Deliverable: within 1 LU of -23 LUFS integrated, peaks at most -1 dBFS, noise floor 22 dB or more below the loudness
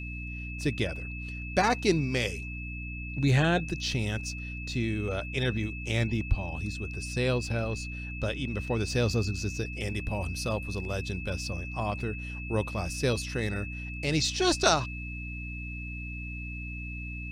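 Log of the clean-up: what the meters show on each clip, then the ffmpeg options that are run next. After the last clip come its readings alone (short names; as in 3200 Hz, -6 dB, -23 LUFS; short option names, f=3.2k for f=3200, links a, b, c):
hum 60 Hz; harmonics up to 300 Hz; hum level -36 dBFS; steady tone 2600 Hz; tone level -40 dBFS; loudness -30.5 LUFS; peak -9.0 dBFS; loudness target -23.0 LUFS
-> -af "bandreject=f=60:t=h:w=6,bandreject=f=120:t=h:w=6,bandreject=f=180:t=h:w=6,bandreject=f=240:t=h:w=6,bandreject=f=300:t=h:w=6"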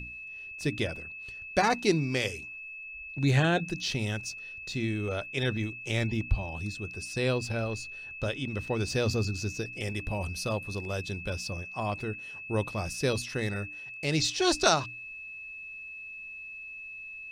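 hum none; steady tone 2600 Hz; tone level -40 dBFS
-> -af "bandreject=f=2.6k:w=30"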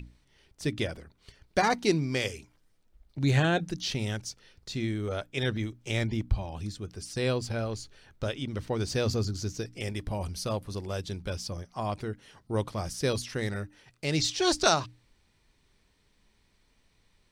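steady tone none; loudness -31.0 LUFS; peak -9.5 dBFS; loudness target -23.0 LUFS
-> -af "volume=8dB"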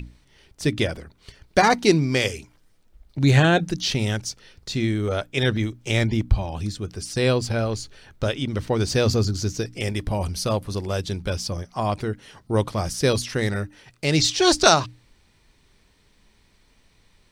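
loudness -23.0 LUFS; peak -1.5 dBFS; noise floor -60 dBFS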